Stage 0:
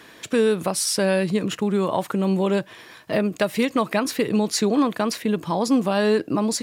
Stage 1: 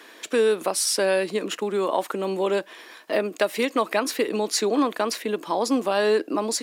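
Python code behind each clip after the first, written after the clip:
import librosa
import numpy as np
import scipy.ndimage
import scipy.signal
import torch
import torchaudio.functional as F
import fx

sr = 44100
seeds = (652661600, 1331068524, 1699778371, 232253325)

y = scipy.signal.sosfilt(scipy.signal.butter(4, 280.0, 'highpass', fs=sr, output='sos'), x)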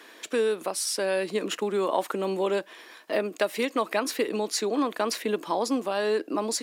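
y = fx.rider(x, sr, range_db=10, speed_s=0.5)
y = F.gain(torch.from_numpy(y), -3.5).numpy()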